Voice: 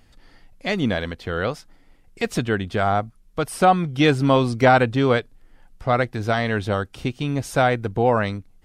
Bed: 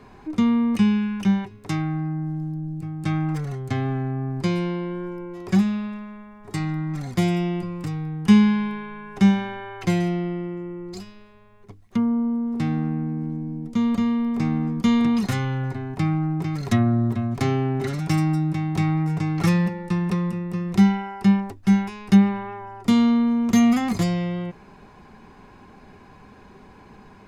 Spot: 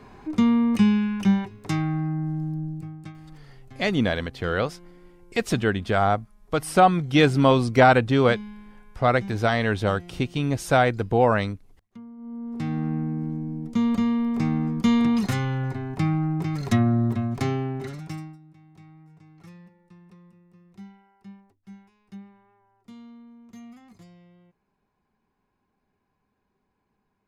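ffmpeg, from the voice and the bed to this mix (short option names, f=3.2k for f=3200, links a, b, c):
-filter_complex "[0:a]adelay=3150,volume=-0.5dB[a];[1:a]volume=20.5dB,afade=t=out:st=2.62:d=0.51:silence=0.0841395,afade=t=in:st=12.17:d=0.78:silence=0.0944061,afade=t=out:st=17.18:d=1.2:silence=0.0446684[b];[a][b]amix=inputs=2:normalize=0"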